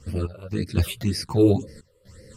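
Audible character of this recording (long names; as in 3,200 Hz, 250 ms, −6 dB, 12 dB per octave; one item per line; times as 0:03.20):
phaser sweep stages 8, 1.9 Hz, lowest notch 210–1,100 Hz
sample-and-hold tremolo 3.9 Hz, depth 90%
a shimmering, thickened sound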